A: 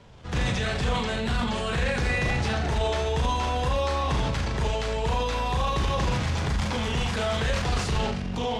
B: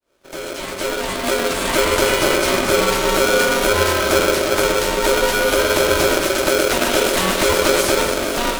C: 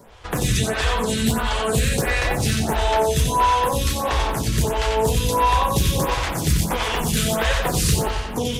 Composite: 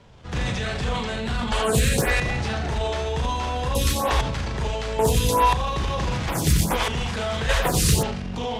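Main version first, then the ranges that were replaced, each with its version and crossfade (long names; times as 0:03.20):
A
0:01.52–0:02.20: punch in from C
0:03.75–0:04.21: punch in from C
0:04.99–0:05.53: punch in from C
0:06.28–0:06.88: punch in from C
0:07.49–0:08.03: punch in from C
not used: B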